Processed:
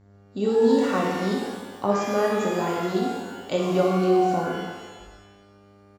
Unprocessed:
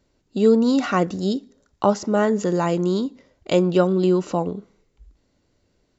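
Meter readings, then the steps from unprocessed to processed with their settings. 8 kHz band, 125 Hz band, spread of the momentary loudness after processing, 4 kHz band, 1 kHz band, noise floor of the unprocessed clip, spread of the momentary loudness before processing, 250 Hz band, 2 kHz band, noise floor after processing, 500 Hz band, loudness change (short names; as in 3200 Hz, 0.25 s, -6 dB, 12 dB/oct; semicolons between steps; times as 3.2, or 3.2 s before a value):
n/a, -5.0 dB, 14 LU, -1.5 dB, +0.5 dB, -68 dBFS, 11 LU, -4.5 dB, 0.0 dB, -53 dBFS, -2.0 dB, -3.0 dB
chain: buzz 100 Hz, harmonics 22, -48 dBFS -8 dB/oct; on a send: feedback echo 60 ms, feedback 58%, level -8 dB; on the sum: shimmer reverb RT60 1.2 s, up +12 st, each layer -8 dB, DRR -1 dB; gain -8 dB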